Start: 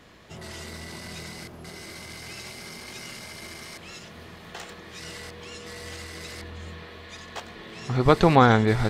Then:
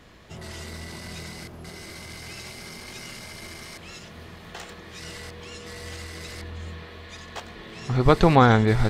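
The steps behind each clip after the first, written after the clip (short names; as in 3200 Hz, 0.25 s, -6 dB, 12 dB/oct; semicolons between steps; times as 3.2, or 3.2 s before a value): low shelf 72 Hz +9 dB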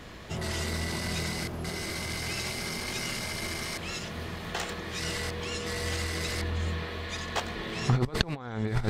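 negative-ratio compressor -25 dBFS, ratio -0.5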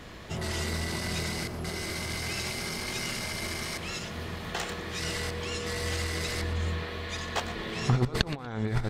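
feedback echo 0.119 s, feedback 24%, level -15.5 dB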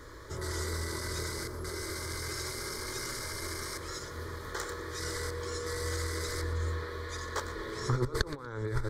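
fixed phaser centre 730 Hz, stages 6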